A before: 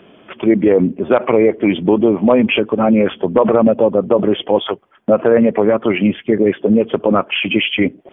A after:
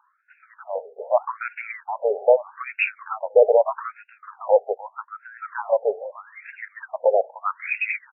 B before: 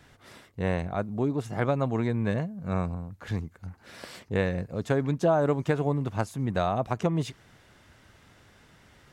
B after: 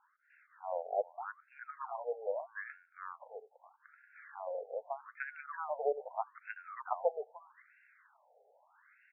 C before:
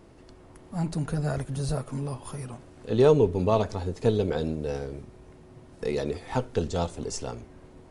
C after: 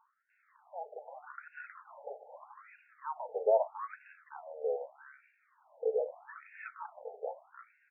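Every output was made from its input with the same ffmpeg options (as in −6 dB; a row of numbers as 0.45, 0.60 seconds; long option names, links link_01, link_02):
-filter_complex "[0:a]lowpass=2600,acrossover=split=1200[link_01][link_02];[link_02]adelay=300[link_03];[link_01][link_03]amix=inputs=2:normalize=0,afftfilt=real='re*between(b*sr/1024,580*pow(2000/580,0.5+0.5*sin(2*PI*0.8*pts/sr))/1.41,580*pow(2000/580,0.5+0.5*sin(2*PI*0.8*pts/sr))*1.41)':imag='im*between(b*sr/1024,580*pow(2000/580,0.5+0.5*sin(2*PI*0.8*pts/sr))/1.41,580*pow(2000/580,0.5+0.5*sin(2*PI*0.8*pts/sr))*1.41)':win_size=1024:overlap=0.75"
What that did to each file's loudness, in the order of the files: −8.5, −12.0, −10.0 LU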